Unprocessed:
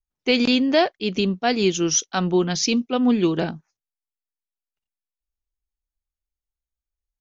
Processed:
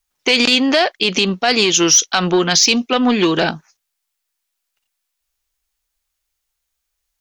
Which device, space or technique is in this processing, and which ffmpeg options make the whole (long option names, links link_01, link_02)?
mastering chain: -af "equalizer=frequency=520:width_type=o:width=1.8:gain=2,acompressor=threshold=-18dB:ratio=3,asoftclip=type=tanh:threshold=-14dB,tiltshelf=frequency=660:gain=-8,alimiter=level_in=15dB:limit=-1dB:release=50:level=0:latency=1,volume=-3dB"